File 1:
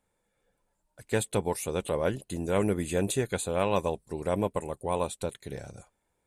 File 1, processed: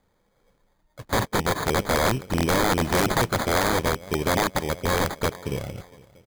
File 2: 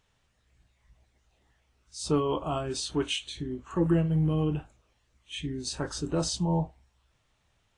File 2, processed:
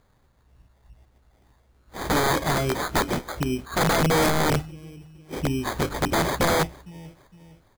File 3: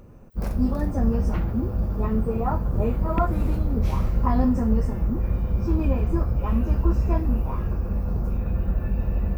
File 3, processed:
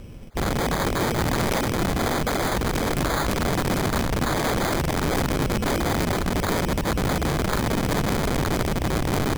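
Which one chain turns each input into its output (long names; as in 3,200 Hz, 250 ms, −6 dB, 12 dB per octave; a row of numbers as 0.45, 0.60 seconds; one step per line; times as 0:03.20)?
low-shelf EQ 400 Hz +4 dB
downward compressor 20 to 1, threshold −20 dBFS
decimation without filtering 16×
repeating echo 460 ms, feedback 39%, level −23 dB
wrap-around overflow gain 22 dB
loudness normalisation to −24 LKFS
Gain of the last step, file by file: +7.0, +6.0, +3.5 decibels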